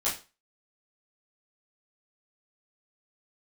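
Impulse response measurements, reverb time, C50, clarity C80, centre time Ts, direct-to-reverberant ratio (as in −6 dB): 0.30 s, 8.5 dB, 14.0 dB, 29 ms, −10.0 dB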